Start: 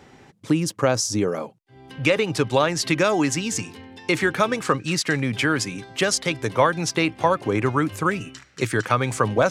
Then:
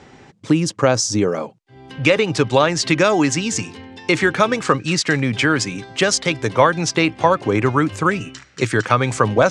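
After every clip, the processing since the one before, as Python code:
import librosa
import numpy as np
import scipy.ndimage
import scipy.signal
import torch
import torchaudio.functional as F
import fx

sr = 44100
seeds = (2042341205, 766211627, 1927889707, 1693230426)

y = scipy.signal.sosfilt(scipy.signal.butter(4, 8400.0, 'lowpass', fs=sr, output='sos'), x)
y = y * librosa.db_to_amplitude(4.5)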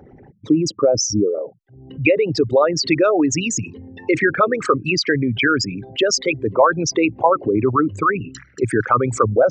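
y = fx.envelope_sharpen(x, sr, power=3.0)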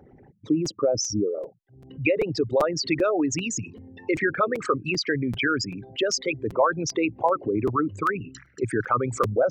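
y = fx.buffer_crackle(x, sr, first_s=0.65, period_s=0.39, block=256, kind='repeat')
y = y * librosa.db_to_amplitude(-7.0)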